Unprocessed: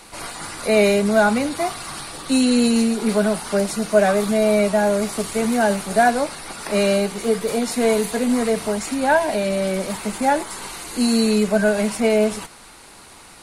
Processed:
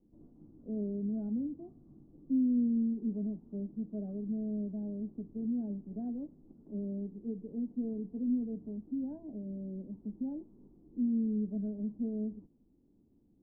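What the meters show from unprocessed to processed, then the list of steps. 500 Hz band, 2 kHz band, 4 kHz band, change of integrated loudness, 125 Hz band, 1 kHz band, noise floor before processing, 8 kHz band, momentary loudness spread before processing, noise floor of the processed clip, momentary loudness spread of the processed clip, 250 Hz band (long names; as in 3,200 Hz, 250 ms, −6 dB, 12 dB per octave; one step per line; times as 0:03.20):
−28.0 dB, below −40 dB, below −40 dB, −17.0 dB, −13.5 dB, below −40 dB, −44 dBFS, below −40 dB, 11 LU, −67 dBFS, 12 LU, −12.0 dB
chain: transistor ladder low-pass 320 Hz, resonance 50%
level −9 dB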